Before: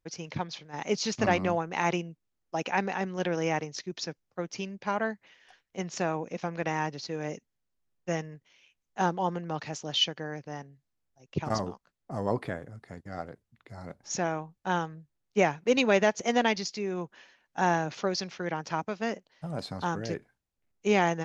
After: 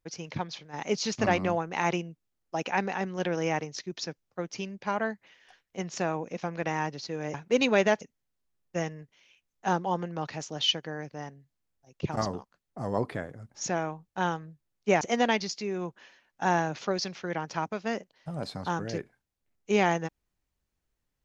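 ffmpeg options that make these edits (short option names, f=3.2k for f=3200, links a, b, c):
-filter_complex "[0:a]asplit=5[a][b][c][d][e];[a]atrim=end=7.342[f];[b]atrim=start=15.498:end=16.172[g];[c]atrim=start=7.338:end=12.832[h];[d]atrim=start=13.988:end=15.502[i];[e]atrim=start=16.168[j];[f][g]acrossfade=d=0.004:c1=hsin:c2=hsin[k];[k][h]acrossfade=d=0.004:c1=hsin:c2=hsin[l];[l][i]acrossfade=d=0.004:c1=hsin:c2=hsin[m];[m][j]acrossfade=d=0.004:c1=hsin:c2=hsin"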